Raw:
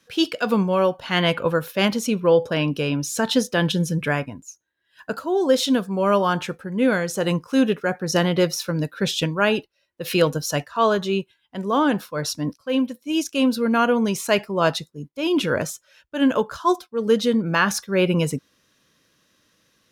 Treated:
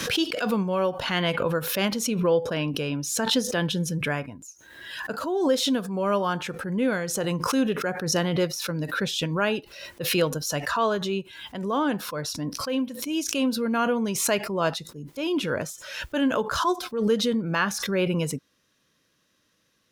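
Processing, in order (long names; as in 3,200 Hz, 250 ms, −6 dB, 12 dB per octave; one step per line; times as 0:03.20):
background raised ahead of every attack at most 52 dB per second
level −5.5 dB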